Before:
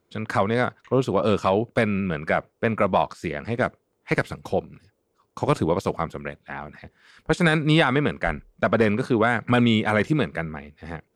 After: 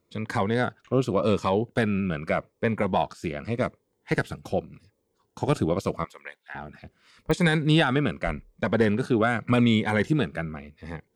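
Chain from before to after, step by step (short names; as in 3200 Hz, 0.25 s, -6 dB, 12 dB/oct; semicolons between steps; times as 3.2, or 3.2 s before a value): 6.04–6.55 HPF 950 Hz 12 dB/oct; pops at 7.31, -16 dBFS; cascading phaser falling 0.84 Hz; gain -1 dB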